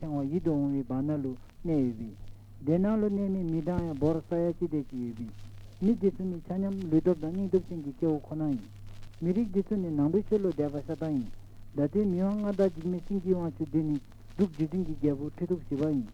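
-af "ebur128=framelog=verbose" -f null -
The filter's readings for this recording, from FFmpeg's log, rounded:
Integrated loudness:
  I:         -30.5 LUFS
  Threshold: -40.9 LUFS
Loudness range:
  LRA:         1.1 LU
  Threshold: -50.8 LUFS
  LRA low:   -31.4 LUFS
  LRA high:  -30.2 LUFS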